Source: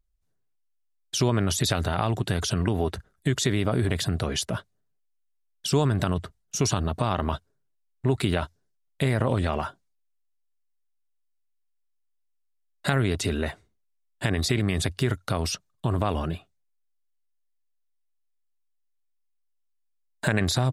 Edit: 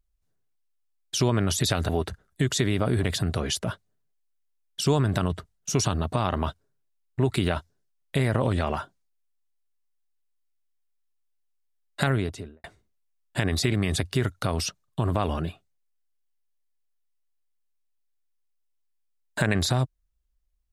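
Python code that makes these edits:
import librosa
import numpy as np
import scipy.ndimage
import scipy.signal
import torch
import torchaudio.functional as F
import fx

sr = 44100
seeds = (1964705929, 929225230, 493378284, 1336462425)

y = fx.studio_fade_out(x, sr, start_s=12.89, length_s=0.61)
y = fx.edit(y, sr, fx.cut(start_s=1.89, length_s=0.86), tone=tone)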